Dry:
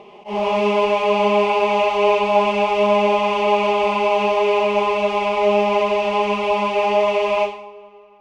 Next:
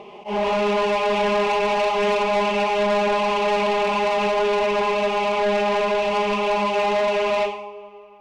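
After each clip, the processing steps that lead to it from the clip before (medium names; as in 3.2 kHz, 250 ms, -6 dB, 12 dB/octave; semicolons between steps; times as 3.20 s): saturation -19 dBFS, distortion -10 dB; trim +2 dB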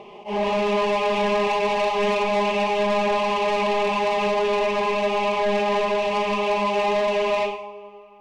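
band-stop 1.4 kHz, Q 6.6; on a send at -11 dB: reverberation RT60 0.40 s, pre-delay 14 ms; on the sum: trim -1.5 dB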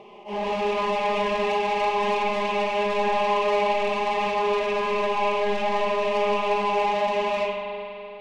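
flange 0.45 Hz, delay 9.1 ms, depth 4.8 ms, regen -87%; spring tank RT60 3.2 s, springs 41 ms, chirp 60 ms, DRR 1 dB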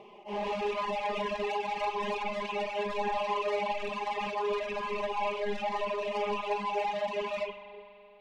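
reverb removal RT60 2 s; trim -5 dB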